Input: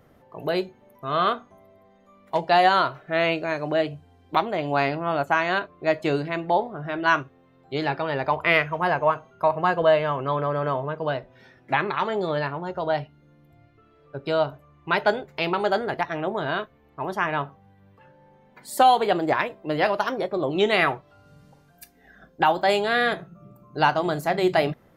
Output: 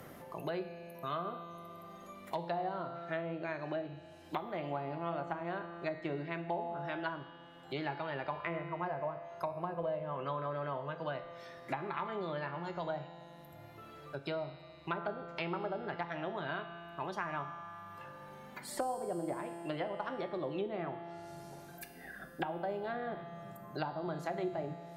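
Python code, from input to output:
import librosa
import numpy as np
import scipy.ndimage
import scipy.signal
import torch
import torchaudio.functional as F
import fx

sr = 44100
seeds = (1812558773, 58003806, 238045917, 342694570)

y = fx.env_lowpass_down(x, sr, base_hz=610.0, full_db=-17.5)
y = scipy.signal.lfilter([1.0, -0.8], [1.0], y)
y = fx.notch(y, sr, hz=460.0, q=12.0)
y = fx.comb_fb(y, sr, f0_hz=170.0, decay_s=1.8, harmonics='all', damping=0.0, mix_pct=80)
y = fx.rev_double_slope(y, sr, seeds[0], early_s=0.81, late_s=3.4, knee_db=-22, drr_db=11.5)
y = fx.band_squash(y, sr, depth_pct=70)
y = F.gain(torch.from_numpy(y), 13.0).numpy()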